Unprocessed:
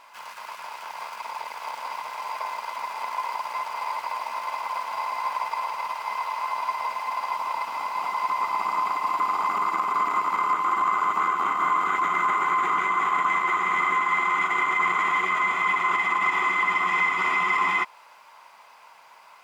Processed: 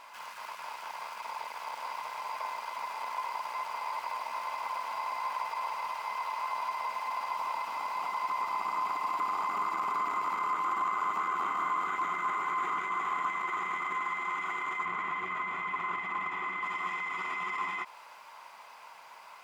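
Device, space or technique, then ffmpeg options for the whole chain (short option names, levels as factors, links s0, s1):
de-esser from a sidechain: -filter_complex "[0:a]asplit=2[s0][s1];[s1]highpass=4600,apad=whole_len=856973[s2];[s0][s2]sidechaincompress=threshold=0.00251:ratio=4:attack=2.1:release=34,asettb=1/sr,asplit=3[s3][s4][s5];[s3]atrim=end=14.854[s6];[s4]atrim=start=14.85:end=16.63,asetpts=PTS-STARTPTS,afade=t=in:d=0.004:c=qsin,afade=t=out:st=1.776:d=0.004:c=qsin,bass=f=250:g=6,treble=f=4000:g=-9[s7];[s5]atrim=start=16.626[s8];[s6][s7]acrossfade=d=0.004:c1=hsin:c2=qsin[s9];[s9][s8]acrossfade=d=0.004:c1=qsin:c2=hsin"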